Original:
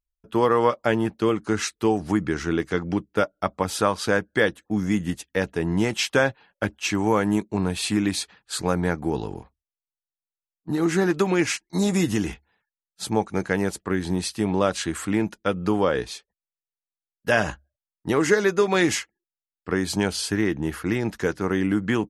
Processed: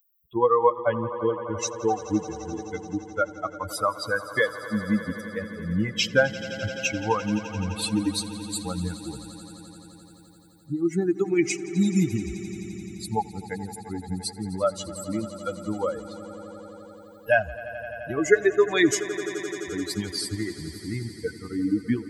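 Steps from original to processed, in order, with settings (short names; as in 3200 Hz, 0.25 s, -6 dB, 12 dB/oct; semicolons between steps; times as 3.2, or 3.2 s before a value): per-bin expansion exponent 3; upward compressor, threshold -48 dBFS; swelling echo 86 ms, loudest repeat 5, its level -18 dB; gain +5.5 dB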